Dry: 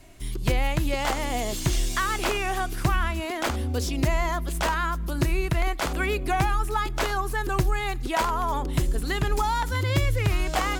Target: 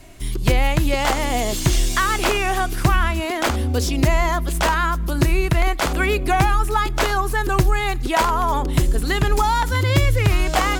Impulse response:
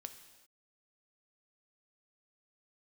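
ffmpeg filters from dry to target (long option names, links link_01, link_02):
-af "volume=6.5dB"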